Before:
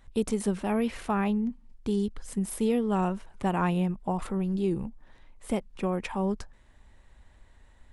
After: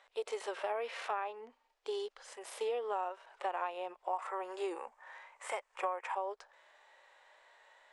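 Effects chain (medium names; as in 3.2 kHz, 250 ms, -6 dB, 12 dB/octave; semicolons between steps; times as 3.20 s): inverse Chebyshev high-pass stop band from 210 Hz, stop band 50 dB; harmonic-percussive split percussive -13 dB; 4.13–6.15 s: graphic EQ 1/2/4/8 kHz +7/+7/-5/+12 dB; compression 6:1, threshold -42 dBFS, peak gain reduction 16 dB; distance through air 93 m; trim +9 dB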